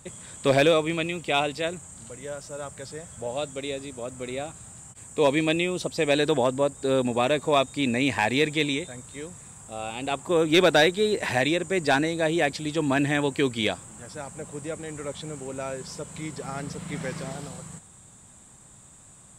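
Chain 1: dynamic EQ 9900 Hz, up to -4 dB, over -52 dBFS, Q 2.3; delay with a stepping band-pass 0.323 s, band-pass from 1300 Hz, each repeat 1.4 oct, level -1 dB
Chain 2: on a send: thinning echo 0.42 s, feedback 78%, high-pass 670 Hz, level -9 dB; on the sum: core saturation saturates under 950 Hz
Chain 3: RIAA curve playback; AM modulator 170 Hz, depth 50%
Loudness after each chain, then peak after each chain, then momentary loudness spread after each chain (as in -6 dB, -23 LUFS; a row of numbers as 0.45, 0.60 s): -25.5, -27.5, -25.5 LUFS; -9.0, -10.0, -6.0 dBFS; 15, 15, 16 LU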